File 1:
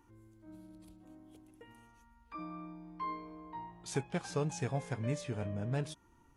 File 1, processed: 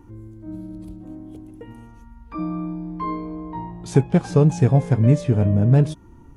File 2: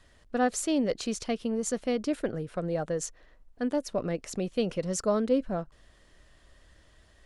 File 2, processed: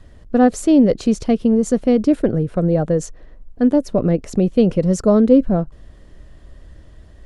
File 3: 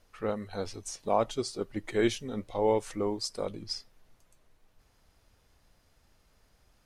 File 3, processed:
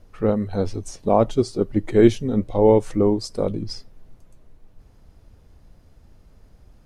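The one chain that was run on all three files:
tilt shelf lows +8 dB, about 640 Hz; normalise peaks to -1.5 dBFS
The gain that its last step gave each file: +14.0, +10.0, +9.0 dB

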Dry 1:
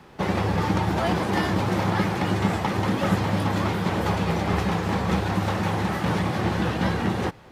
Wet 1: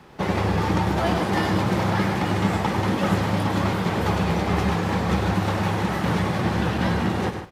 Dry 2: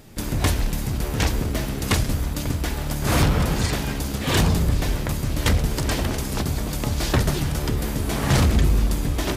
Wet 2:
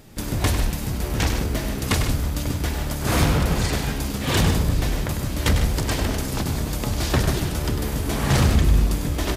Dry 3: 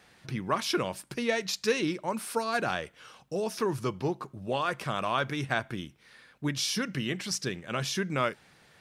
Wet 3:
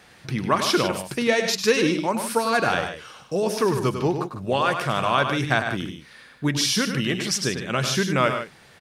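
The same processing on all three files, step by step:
loudspeakers at several distances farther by 34 m -8 dB, 52 m -11 dB; match loudness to -23 LUFS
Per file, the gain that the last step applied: +0.5, -0.5, +7.5 dB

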